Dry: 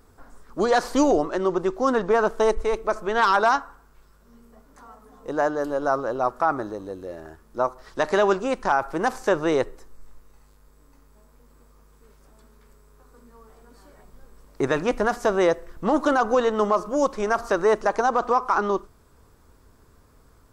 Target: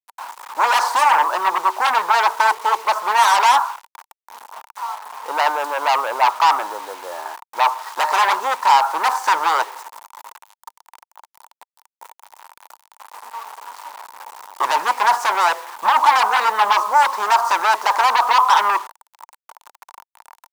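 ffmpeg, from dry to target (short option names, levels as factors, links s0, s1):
-af "aeval=exprs='0.355*sin(PI/2*4.47*val(0)/0.355)':c=same,acrusher=bits=4:mix=0:aa=0.000001,highpass=f=920:t=q:w=7.3,volume=0.398"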